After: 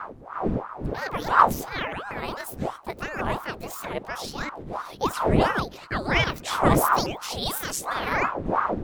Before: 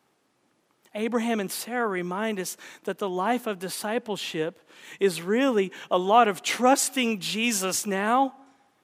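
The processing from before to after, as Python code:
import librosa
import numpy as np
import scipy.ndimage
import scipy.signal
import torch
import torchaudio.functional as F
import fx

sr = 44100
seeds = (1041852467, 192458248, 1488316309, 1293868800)

y = fx.pitch_ramps(x, sr, semitones=11.0, every_ms=642)
y = fx.dmg_wind(y, sr, seeds[0], corner_hz=200.0, level_db=-25.0)
y = fx.ring_lfo(y, sr, carrier_hz=650.0, swing_pct=90, hz=2.9)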